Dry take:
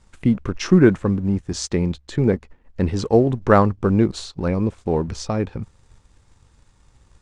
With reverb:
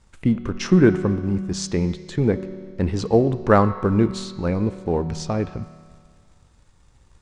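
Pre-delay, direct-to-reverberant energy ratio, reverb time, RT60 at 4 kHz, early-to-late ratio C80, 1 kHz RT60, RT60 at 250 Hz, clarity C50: 5 ms, 10.0 dB, 1.9 s, 1.9 s, 12.5 dB, 1.9 s, 1.9 s, 11.5 dB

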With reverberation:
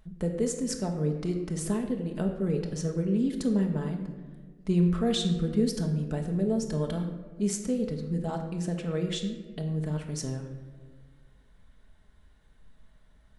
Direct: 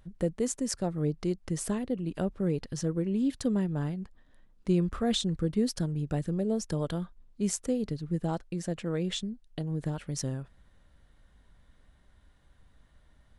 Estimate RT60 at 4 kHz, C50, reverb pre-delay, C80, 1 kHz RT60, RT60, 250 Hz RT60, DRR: 0.80 s, 7.0 dB, 5 ms, 8.5 dB, 1.2 s, 1.5 s, 2.0 s, 2.0 dB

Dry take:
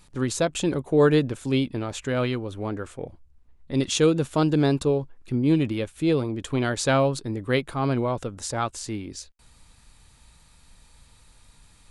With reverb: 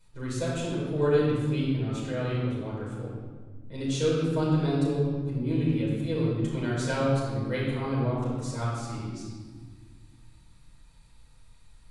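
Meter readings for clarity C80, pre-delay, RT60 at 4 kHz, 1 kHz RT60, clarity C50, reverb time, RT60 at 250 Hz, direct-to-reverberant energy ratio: 1.5 dB, 6 ms, 1.1 s, 1.5 s, -0.5 dB, 1.6 s, 2.7 s, -7.5 dB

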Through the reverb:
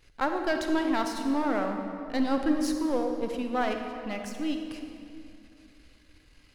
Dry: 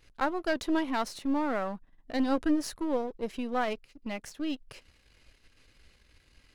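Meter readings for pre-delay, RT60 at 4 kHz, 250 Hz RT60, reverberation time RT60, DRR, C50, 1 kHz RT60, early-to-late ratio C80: 39 ms, 1.7 s, 3.2 s, 2.6 s, 4.5 dB, 5.0 dB, 2.4 s, 6.0 dB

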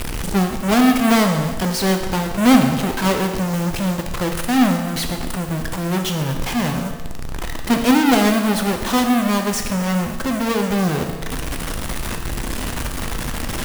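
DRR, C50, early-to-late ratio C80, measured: 4.0 dB, 6.0 dB, 8.0 dB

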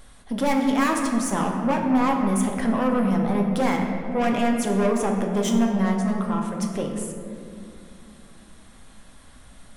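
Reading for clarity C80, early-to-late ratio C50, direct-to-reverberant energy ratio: 5.0 dB, 3.5 dB, 1.0 dB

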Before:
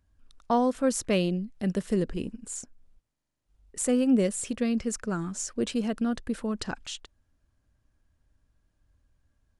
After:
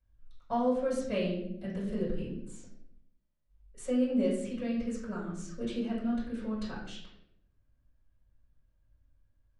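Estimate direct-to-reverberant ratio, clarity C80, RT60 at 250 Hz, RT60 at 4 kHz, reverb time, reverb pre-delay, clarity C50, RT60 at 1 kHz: -11.0 dB, 6.5 dB, 0.95 s, 0.55 s, 0.75 s, 3 ms, 3.5 dB, 0.60 s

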